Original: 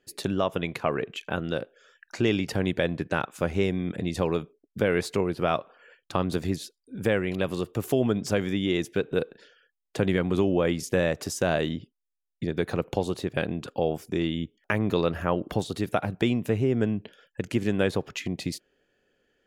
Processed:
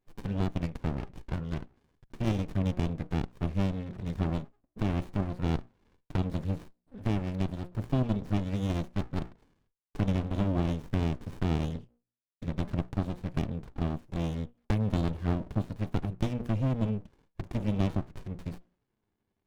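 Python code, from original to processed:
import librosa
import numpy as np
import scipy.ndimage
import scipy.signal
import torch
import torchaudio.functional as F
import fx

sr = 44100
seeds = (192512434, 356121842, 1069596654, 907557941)

y = fx.hum_notches(x, sr, base_hz=60, count=9)
y = fx.env_flanger(y, sr, rest_ms=10.4, full_db=-23.5)
y = fx.running_max(y, sr, window=65)
y = y * 10.0 ** (-3.0 / 20.0)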